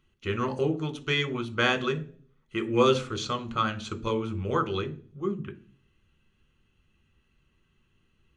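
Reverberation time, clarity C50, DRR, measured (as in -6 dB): 0.45 s, 17.5 dB, 6.5 dB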